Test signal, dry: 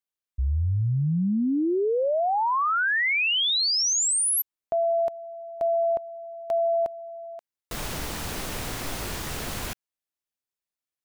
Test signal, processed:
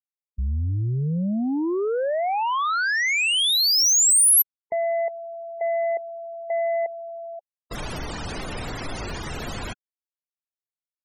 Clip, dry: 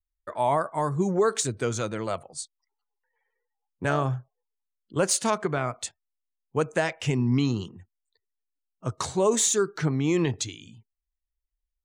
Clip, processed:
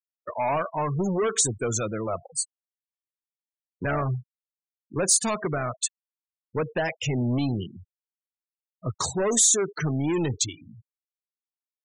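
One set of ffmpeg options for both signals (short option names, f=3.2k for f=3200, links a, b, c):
-af "asoftclip=type=tanh:threshold=-24dB,afftfilt=real='re*gte(hypot(re,im),0.02)':imag='im*gte(hypot(re,im),0.02)':win_size=1024:overlap=0.75,aemphasis=mode=production:type=cd,volume=3.5dB"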